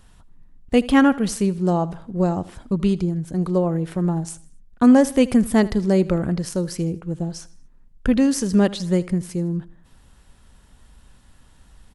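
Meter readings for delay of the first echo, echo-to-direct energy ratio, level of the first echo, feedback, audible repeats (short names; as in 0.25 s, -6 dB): 79 ms, -18.5 dB, -19.5 dB, 44%, 3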